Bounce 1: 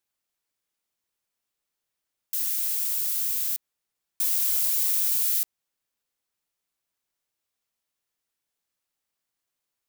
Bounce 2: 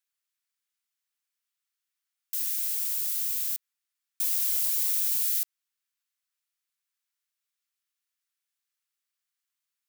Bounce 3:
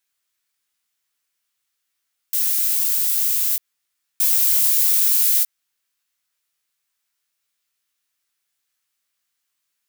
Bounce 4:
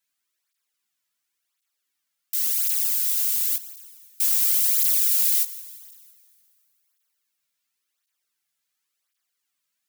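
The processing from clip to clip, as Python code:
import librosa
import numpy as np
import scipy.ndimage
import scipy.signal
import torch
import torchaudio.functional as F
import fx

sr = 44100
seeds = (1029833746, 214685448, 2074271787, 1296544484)

y1 = scipy.signal.sosfilt(scipy.signal.butter(4, 1200.0, 'highpass', fs=sr, output='sos'), x)
y1 = F.gain(torch.from_numpy(y1), -2.5).numpy()
y2 = fx.doubler(y1, sr, ms=18.0, db=-4.5)
y2 = F.gain(torch.from_numpy(y2), 8.5).numpy()
y3 = fx.echo_feedback(y2, sr, ms=168, feedback_pct=55, wet_db=-19.5)
y3 = fx.rev_plate(y3, sr, seeds[0], rt60_s=2.8, hf_ratio=0.9, predelay_ms=0, drr_db=18.0)
y3 = fx.flanger_cancel(y3, sr, hz=0.93, depth_ms=2.8)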